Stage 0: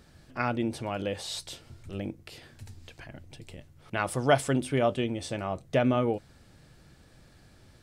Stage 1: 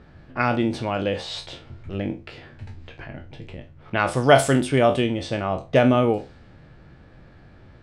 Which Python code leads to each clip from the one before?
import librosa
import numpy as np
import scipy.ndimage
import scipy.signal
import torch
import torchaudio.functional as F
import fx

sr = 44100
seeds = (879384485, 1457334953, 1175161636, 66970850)

y = fx.spec_trails(x, sr, decay_s=0.3)
y = fx.env_lowpass(y, sr, base_hz=2100.0, full_db=-20.0)
y = y * 10.0 ** (7.0 / 20.0)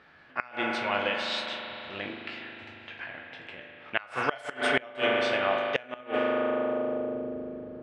y = fx.rev_spring(x, sr, rt60_s=3.9, pass_ms=(39,), chirp_ms=65, drr_db=2.0)
y = fx.filter_sweep_bandpass(y, sr, from_hz=2100.0, to_hz=400.0, start_s=6.11, end_s=7.32, q=0.88)
y = fx.gate_flip(y, sr, shuts_db=-13.0, range_db=-25)
y = y * 10.0 ** (3.0 / 20.0)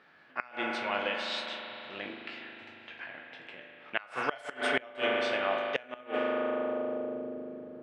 y = scipy.signal.sosfilt(scipy.signal.butter(2, 160.0, 'highpass', fs=sr, output='sos'), x)
y = y * 10.0 ** (-3.5 / 20.0)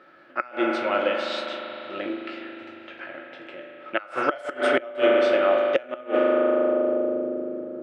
y = fx.small_body(x, sr, hz=(340.0, 550.0, 1300.0), ring_ms=45, db=15)
y = y * 10.0 ** (2.0 / 20.0)